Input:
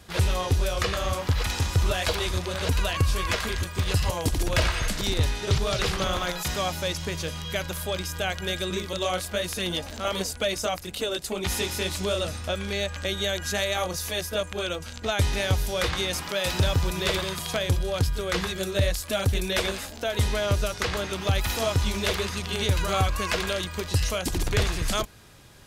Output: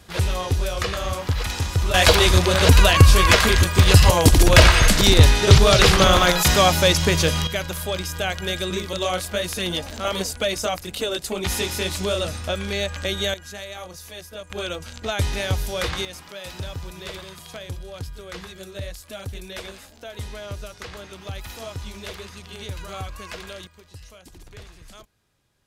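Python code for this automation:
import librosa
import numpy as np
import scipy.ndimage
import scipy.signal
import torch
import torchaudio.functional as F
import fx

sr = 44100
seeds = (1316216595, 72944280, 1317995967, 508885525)

y = fx.gain(x, sr, db=fx.steps((0.0, 1.0), (1.94, 12.0), (7.47, 3.0), (13.34, -9.0), (14.5, 0.5), (16.05, -9.5), (23.67, -19.0)))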